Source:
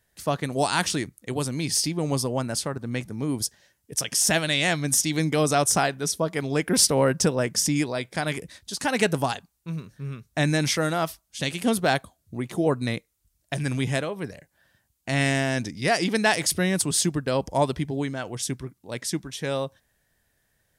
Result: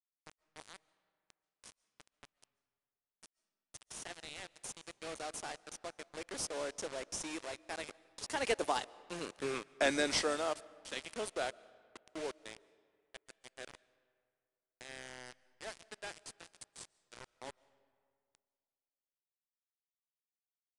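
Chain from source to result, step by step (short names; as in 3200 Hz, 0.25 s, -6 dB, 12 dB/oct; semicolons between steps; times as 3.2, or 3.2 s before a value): Doppler pass-by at 9.42, 20 m/s, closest 1.9 m; HPF 350 Hz 24 dB/oct; in parallel at -10.5 dB: sample-rate reducer 2000 Hz, jitter 0%; on the sum: soft clip -30 dBFS, distortion -18 dB; bit-crush 9-bit; on a send at -22 dB: reverb RT60 2.1 s, pre-delay 0.1 s; on the sum: downsampling 22050 Hz; gain +10.5 dB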